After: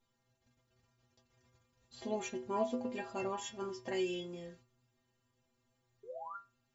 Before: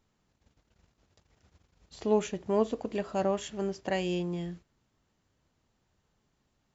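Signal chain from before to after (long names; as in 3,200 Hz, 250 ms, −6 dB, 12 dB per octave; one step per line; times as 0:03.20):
sound drawn into the spectrogram rise, 0:06.03–0:06.37, 400–1,500 Hz −41 dBFS
stiff-string resonator 120 Hz, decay 0.41 s, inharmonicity 0.008
level +7.5 dB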